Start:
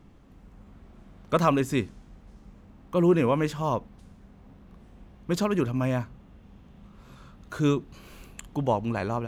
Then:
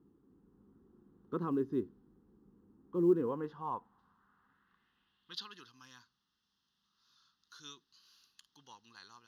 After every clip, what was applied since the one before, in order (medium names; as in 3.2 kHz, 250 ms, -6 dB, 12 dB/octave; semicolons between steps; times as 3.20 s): static phaser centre 2.3 kHz, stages 6; band-pass sweep 380 Hz -> 5.5 kHz, 3.04–5.78 s; short-mantissa float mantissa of 6-bit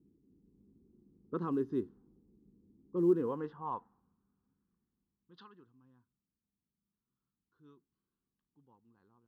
level-controlled noise filter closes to 320 Hz, open at -30.5 dBFS